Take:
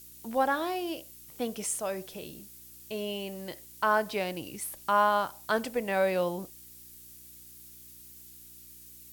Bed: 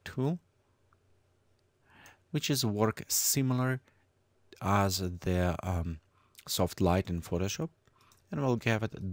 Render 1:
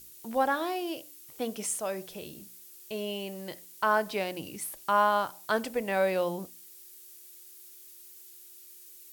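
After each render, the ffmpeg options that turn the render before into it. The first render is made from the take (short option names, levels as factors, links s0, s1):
-af "bandreject=f=60:t=h:w=4,bandreject=f=120:t=h:w=4,bandreject=f=180:t=h:w=4,bandreject=f=240:t=h:w=4,bandreject=f=300:t=h:w=4"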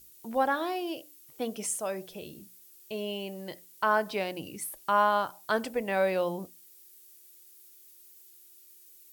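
-af "afftdn=nr=6:nf=-51"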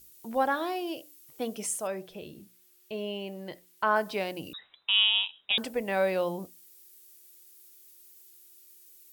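-filter_complex "[0:a]asettb=1/sr,asplit=3[s0][s1][s2];[s0]atrim=end=1.874[s3];[s1]atrim=start=1.87:end=3.96,asetpts=PTS-STARTPTS,afade=t=in:d=0.004:c=qsin,afade=t=out:st=2.086:d=0.004:c=qsin,acrossover=split=4000[s4][s5];[s5]acompressor=threshold=0.00126:ratio=4:attack=1:release=60[s6];[s4][s6]amix=inputs=2:normalize=0[s7];[s2]atrim=start=3.956[s8];[s3][s7]acrossfade=d=0.004:c1=hsin:c2=qsin[s9];[s9][s8]acrossfade=d=0.004:c1=qsin:c2=hsin,asettb=1/sr,asplit=3[s10][s11][s12];[s10]atrim=end=4.534[s13];[s11]atrim=start=4.53:end=5.58,asetpts=PTS-STARTPTS,afade=t=in:d=0.004:c=qsin,afade=t=out:st=1.046:d=0.004:c=qsin,lowpass=f=3400:t=q:w=0.5098,lowpass=f=3400:t=q:w=0.6013,lowpass=f=3400:t=q:w=0.9,lowpass=f=3400:t=q:w=2.563,afreqshift=-4000[s14];[s12]atrim=start=5.576[s15];[s13][s14]acrossfade=d=0.004:c1=hsin:c2=qsin[s16];[s16][s15]acrossfade=d=0.004:c1=qsin:c2=hsin"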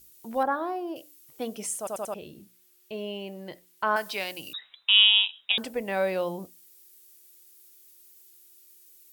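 -filter_complex "[0:a]asettb=1/sr,asplit=3[s0][s1][s2];[s0]atrim=end=0.434[s3];[s1]atrim=start=0.43:end=0.96,asetpts=PTS-STARTPTS,afade=t=in:d=0.004:c=qsin,afade=t=out:st=0.526:d=0.004:c=qsin,highshelf=f=1800:t=q:w=1.5:g=-11[s4];[s2]atrim=start=0.956[s5];[s3][s4]acrossfade=d=0.004:c1=hsin:c2=qsin[s6];[s6][s5]acrossfade=d=0.004:c1=qsin:c2=hsin,asettb=1/sr,asplit=3[s7][s8][s9];[s7]atrim=end=3.964[s10];[s8]atrim=start=3.96:end=5.52,asetpts=PTS-STARTPTS,afade=t=in:d=0.004:c=qsin,afade=t=out:st=1.556:d=0.004:c=qsin,tiltshelf=f=1100:g=-7.5[s11];[s9]atrim=start=5.516[s12];[s10][s11]acrossfade=d=0.004:c1=hsin:c2=qsin[s13];[s13][s12]acrossfade=d=0.004:c1=qsin:c2=hsin,asplit=5[s14][s15][s16][s17][s18];[s14]atrim=end=1.872[s19];[s15]atrim=start=1.778:end=1.872[s20];[s16]atrim=start=1.778:end=1.872[s21];[s17]atrim=start=1.778:end=1.872[s22];[s18]atrim=start=2.138[s23];[s19][s20]acrossfade=d=0.004:c1=hsin:c2=hsin[s24];[s24][s21]acrossfade=d=0.004:c1=hsin:c2=hsin[s25];[s25][s22]acrossfade=d=0.004:c1=hsin:c2=hsin[s26];[s26][s23]acrossfade=d=0.004:c1=hsin:c2=hsin"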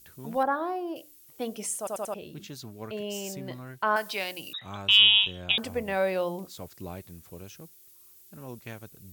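-filter_complex "[1:a]volume=0.237[s0];[0:a][s0]amix=inputs=2:normalize=0"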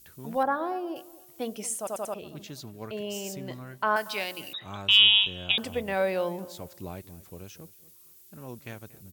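-filter_complex "[0:a]asplit=2[s0][s1];[s1]adelay=233,lowpass=f=2000:p=1,volume=0.126,asplit=2[s2][s3];[s3]adelay=233,lowpass=f=2000:p=1,volume=0.32,asplit=2[s4][s5];[s5]adelay=233,lowpass=f=2000:p=1,volume=0.32[s6];[s0][s2][s4][s6]amix=inputs=4:normalize=0"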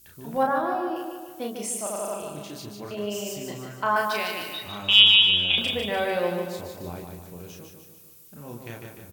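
-filter_complex "[0:a]asplit=2[s0][s1];[s1]adelay=34,volume=0.708[s2];[s0][s2]amix=inputs=2:normalize=0,aecho=1:1:149|298|447|596|745|894:0.531|0.271|0.138|0.0704|0.0359|0.0183"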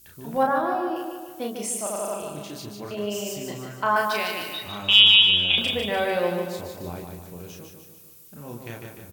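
-af "volume=1.19,alimiter=limit=0.794:level=0:latency=1"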